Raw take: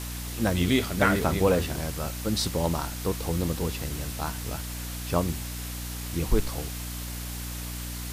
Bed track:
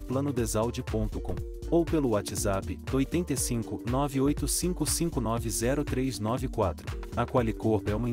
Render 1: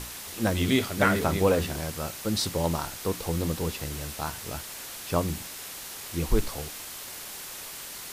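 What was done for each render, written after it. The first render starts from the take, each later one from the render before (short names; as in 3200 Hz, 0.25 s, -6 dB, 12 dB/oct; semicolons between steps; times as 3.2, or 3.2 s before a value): notches 60/120/180/240/300 Hz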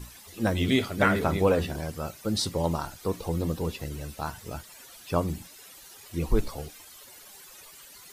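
denoiser 14 dB, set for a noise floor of -40 dBFS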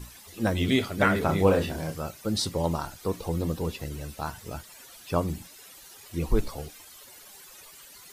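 1.26–2.02 doubler 31 ms -5.5 dB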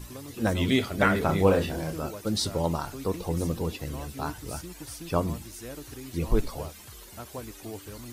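add bed track -13.5 dB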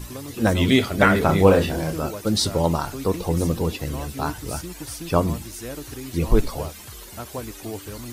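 gain +6.5 dB; limiter -1 dBFS, peak gain reduction 1 dB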